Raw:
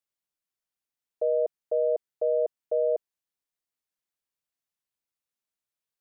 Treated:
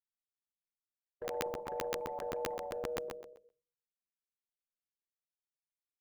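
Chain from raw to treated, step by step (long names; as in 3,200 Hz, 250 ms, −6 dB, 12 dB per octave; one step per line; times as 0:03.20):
brickwall limiter −24.5 dBFS, peak gain reduction 6.5 dB
downward expander −34 dBFS
rectangular room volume 270 cubic metres, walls furnished, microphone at 1.1 metres
dynamic equaliser 510 Hz, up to +5 dB, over −39 dBFS, Q 1.9
delay with pitch and tempo change per echo 220 ms, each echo +3 semitones, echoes 2, each echo −6 dB
Butterworth band-reject 670 Hz, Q 2.3
low-shelf EQ 280 Hz +8.5 dB
downward compressor 1.5 to 1, threshold −33 dBFS, peak gain reduction 3.5 dB
repeating echo 123 ms, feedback 24%, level −6 dB
regular buffer underruns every 0.13 s, samples 512, zero, from 0:00.63
every bin compressed towards the loudest bin 2 to 1
level +2.5 dB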